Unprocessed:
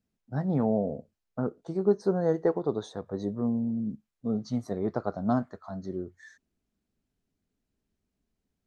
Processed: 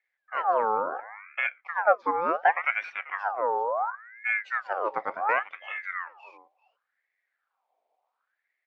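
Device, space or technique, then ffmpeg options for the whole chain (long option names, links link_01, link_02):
voice changer toy: -filter_complex "[0:a]asettb=1/sr,asplit=3[link_01][link_02][link_03];[link_01]atrim=end=0.654[link_04];[link_02]atrim=start=0.65:end=2.21,asetpts=PTS-STARTPTS,afade=type=in:duration=0.004:curve=qsin,afade=type=out:start_time=1.556:duration=0.004:curve=qsin,highshelf=frequency=4700:gain=-10.5[link_05];[link_03]atrim=start=2.206[link_06];[link_04][link_05]acrossfade=duration=0.004:curve1=hsin:curve2=qsin[link_07];[link_07][link_06]acrossfade=duration=0.004:curve1=qsin:curve2=hsin,aecho=1:1:390:0.106,aeval=exprs='val(0)*sin(2*PI*1300*n/s+1300*0.5/0.7*sin(2*PI*0.7*n/s))':channel_layout=same,highpass=440,equalizer=frequency=530:width_type=q:width=4:gain=6,equalizer=frequency=750:width_type=q:width=4:gain=9,equalizer=frequency=2300:width_type=q:width=4:gain=5,lowpass=frequency=4200:width=0.5412,lowpass=frequency=4200:width=1.3066,volume=1.5dB"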